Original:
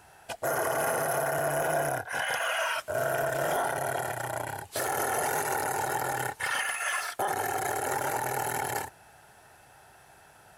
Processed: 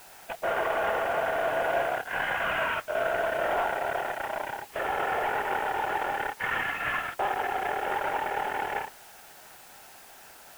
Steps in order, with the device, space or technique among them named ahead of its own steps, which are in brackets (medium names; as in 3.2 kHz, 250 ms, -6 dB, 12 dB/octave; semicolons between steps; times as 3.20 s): army field radio (band-pass 400–3300 Hz; CVSD coder 16 kbps; white noise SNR 22 dB); trim +2.5 dB